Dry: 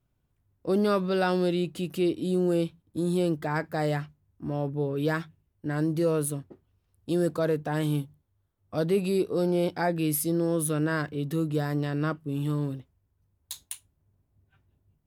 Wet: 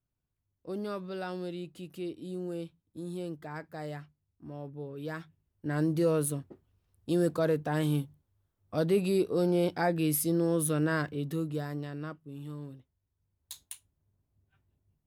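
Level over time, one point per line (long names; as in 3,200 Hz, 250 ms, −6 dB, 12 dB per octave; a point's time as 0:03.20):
0:05.02 −12 dB
0:05.76 −1.5 dB
0:11.02 −1.5 dB
0:12.26 −13 dB
0:12.76 −13 dB
0:13.52 −6 dB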